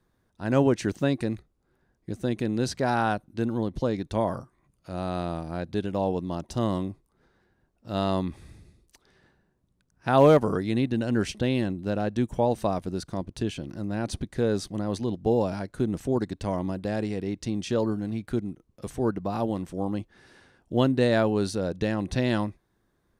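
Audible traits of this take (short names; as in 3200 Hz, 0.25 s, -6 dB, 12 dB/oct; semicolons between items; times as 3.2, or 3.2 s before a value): noise floor -72 dBFS; spectral tilt -6.5 dB/oct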